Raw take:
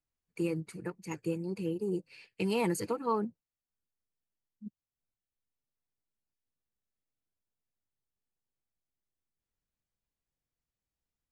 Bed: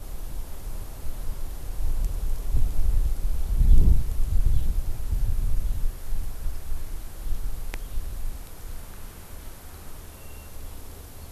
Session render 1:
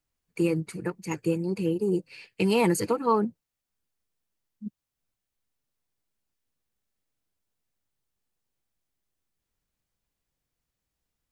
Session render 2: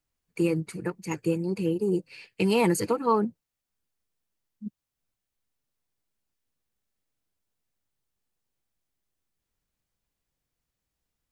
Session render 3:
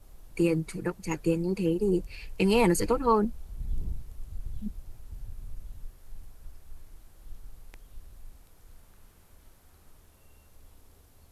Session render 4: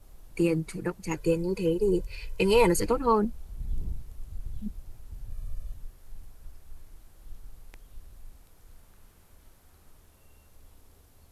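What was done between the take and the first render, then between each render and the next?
level +7.5 dB
no processing that can be heard
mix in bed −16 dB
0:01.17–0:02.79: comb filter 2 ms; 0:05.30–0:05.74: comb filter 1.7 ms, depth 69%

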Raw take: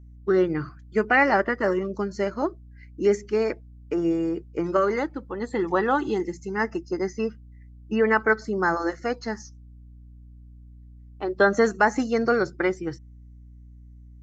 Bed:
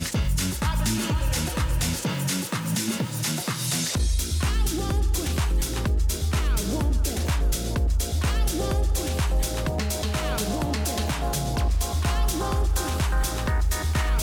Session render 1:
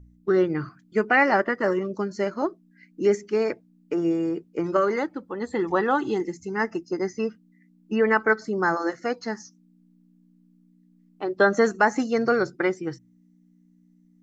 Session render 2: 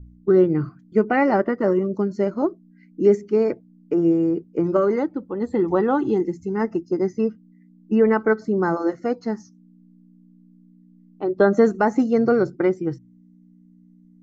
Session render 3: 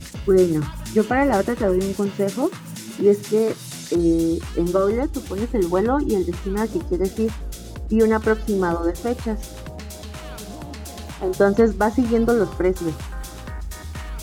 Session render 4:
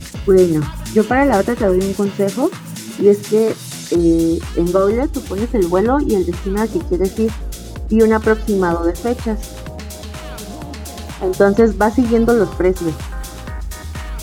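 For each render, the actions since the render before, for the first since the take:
hum removal 60 Hz, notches 2
tilt shelving filter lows +8 dB, about 830 Hz; notch filter 1,700 Hz, Q 13
mix in bed −8.5 dB
level +5 dB; brickwall limiter −1 dBFS, peak gain reduction 1 dB

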